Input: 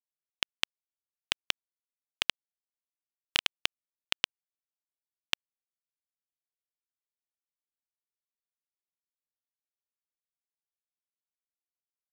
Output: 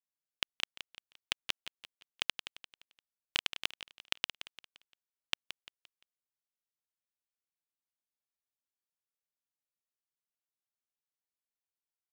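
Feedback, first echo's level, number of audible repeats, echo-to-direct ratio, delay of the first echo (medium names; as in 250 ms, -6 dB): 39%, -11.0 dB, 3, -10.5 dB, 173 ms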